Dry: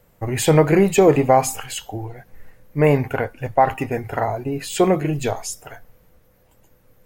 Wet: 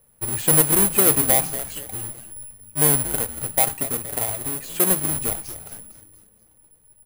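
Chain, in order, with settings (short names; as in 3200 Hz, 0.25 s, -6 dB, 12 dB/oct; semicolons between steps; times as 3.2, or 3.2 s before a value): half-waves squared off; frequency-shifting echo 0.234 s, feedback 44%, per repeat -110 Hz, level -12.5 dB; careless resampling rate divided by 4×, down filtered, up zero stuff; gain -13 dB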